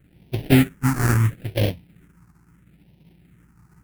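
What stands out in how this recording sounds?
aliases and images of a low sample rate 1,100 Hz, jitter 20%
phaser sweep stages 4, 0.75 Hz, lowest notch 550–1,300 Hz

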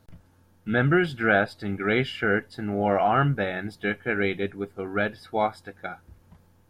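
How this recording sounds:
background noise floor −60 dBFS
spectral slope −5.0 dB per octave

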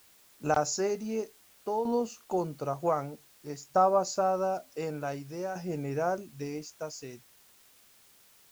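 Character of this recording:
tremolo saw down 0.54 Hz, depth 65%
a quantiser's noise floor 10 bits, dither triangular

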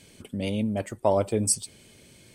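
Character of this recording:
background noise floor −55 dBFS
spectral slope −4.5 dB per octave

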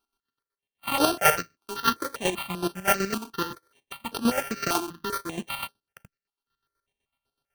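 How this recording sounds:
a buzz of ramps at a fixed pitch in blocks of 32 samples
chopped level 8 Hz, depth 65%, duty 40%
aliases and images of a low sample rate 7,300 Hz, jitter 0%
notches that jump at a steady rate 5.1 Hz 520–7,100 Hz

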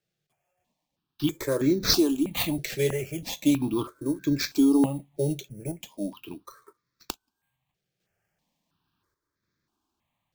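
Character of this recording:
sample-and-hold tremolo
aliases and images of a low sample rate 10,000 Hz, jitter 0%
notches that jump at a steady rate 3.1 Hz 270–2,900 Hz

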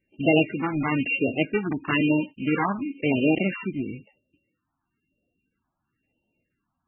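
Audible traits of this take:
a buzz of ramps at a fixed pitch in blocks of 16 samples
phaser sweep stages 4, 1 Hz, lowest notch 460–1,500 Hz
MP3

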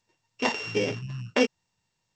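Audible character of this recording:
a buzz of ramps at a fixed pitch in blocks of 16 samples
G.722

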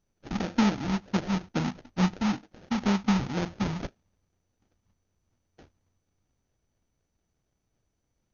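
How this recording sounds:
phaser sweep stages 2, 2.1 Hz, lowest notch 490–1,700 Hz
aliases and images of a low sample rate 1,100 Hz, jitter 20%
MP2

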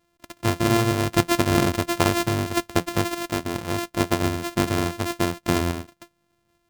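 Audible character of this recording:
a buzz of ramps at a fixed pitch in blocks of 128 samples
sample-and-hold tremolo

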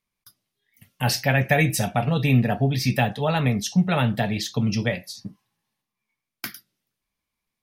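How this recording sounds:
background noise floor −85 dBFS
spectral slope −5.5 dB per octave

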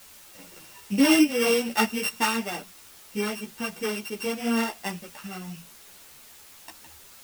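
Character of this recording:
a buzz of ramps at a fixed pitch in blocks of 16 samples
tremolo triangle 2.9 Hz, depth 50%
a quantiser's noise floor 8 bits, dither triangular
a shimmering, thickened sound

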